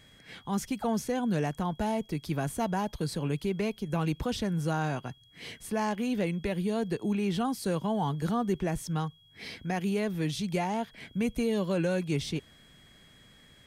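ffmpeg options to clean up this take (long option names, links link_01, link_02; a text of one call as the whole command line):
ffmpeg -i in.wav -af "bandreject=frequency=3300:width=30" out.wav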